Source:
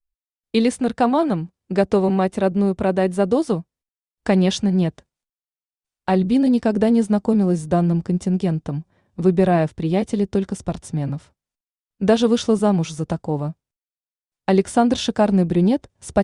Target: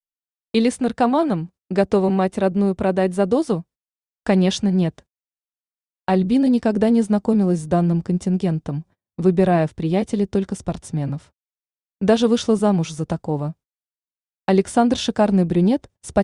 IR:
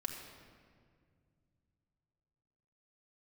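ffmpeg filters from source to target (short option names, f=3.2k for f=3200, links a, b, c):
-af "agate=range=-31dB:threshold=-42dB:ratio=16:detection=peak"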